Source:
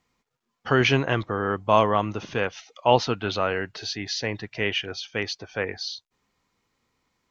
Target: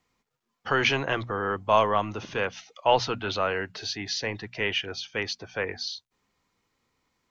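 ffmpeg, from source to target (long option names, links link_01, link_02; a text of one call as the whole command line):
ffmpeg -i in.wav -filter_complex "[0:a]bandreject=frequency=60:width_type=h:width=6,bandreject=frequency=120:width_type=h:width=6,bandreject=frequency=180:width_type=h:width=6,bandreject=frequency=240:width_type=h:width=6,acrossover=split=480|1100[link_01][link_02][link_03];[link_01]asoftclip=type=tanh:threshold=-28.5dB[link_04];[link_04][link_02][link_03]amix=inputs=3:normalize=0,volume=-1dB" out.wav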